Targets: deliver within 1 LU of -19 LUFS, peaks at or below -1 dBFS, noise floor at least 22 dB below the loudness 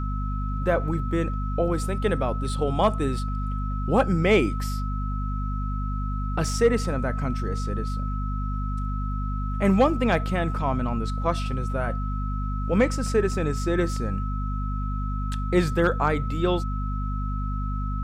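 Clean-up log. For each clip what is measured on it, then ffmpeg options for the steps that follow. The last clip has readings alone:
hum 50 Hz; highest harmonic 250 Hz; hum level -25 dBFS; steady tone 1.3 kHz; tone level -35 dBFS; loudness -26.0 LUFS; peak level -9.0 dBFS; loudness target -19.0 LUFS
-> -af "bandreject=f=50:t=h:w=6,bandreject=f=100:t=h:w=6,bandreject=f=150:t=h:w=6,bandreject=f=200:t=h:w=6,bandreject=f=250:t=h:w=6"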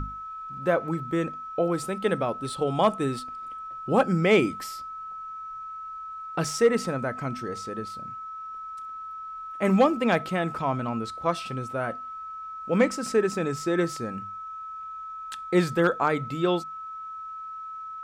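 hum not found; steady tone 1.3 kHz; tone level -35 dBFS
-> -af "bandreject=f=1300:w=30"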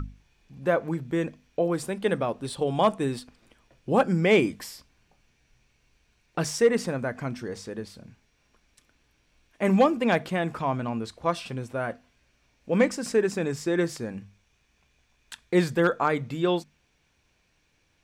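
steady tone not found; loudness -26.5 LUFS; peak level -9.5 dBFS; loudness target -19.0 LUFS
-> -af "volume=2.37"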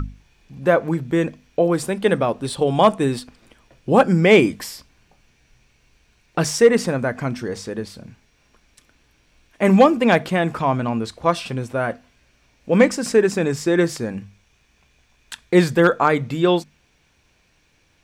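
loudness -19.0 LUFS; peak level -2.0 dBFS; noise floor -61 dBFS

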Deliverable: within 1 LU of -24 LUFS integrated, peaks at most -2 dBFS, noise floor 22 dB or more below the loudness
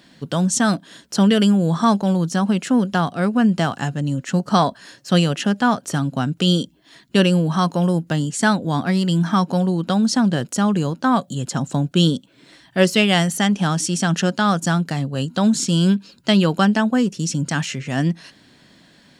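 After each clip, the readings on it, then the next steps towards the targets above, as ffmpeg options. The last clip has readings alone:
loudness -19.5 LUFS; peak level -2.5 dBFS; loudness target -24.0 LUFS
-> -af "volume=0.596"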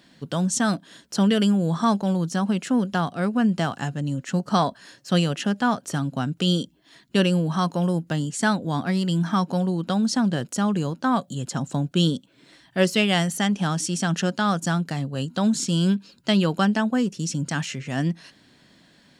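loudness -24.0 LUFS; peak level -7.0 dBFS; noise floor -57 dBFS

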